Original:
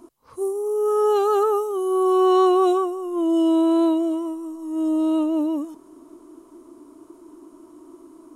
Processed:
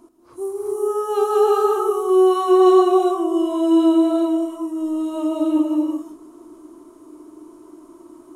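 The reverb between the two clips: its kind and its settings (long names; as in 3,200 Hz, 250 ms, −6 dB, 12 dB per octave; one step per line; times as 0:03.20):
reverb whose tail is shaped and stops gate 420 ms rising, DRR −3.5 dB
level −2.5 dB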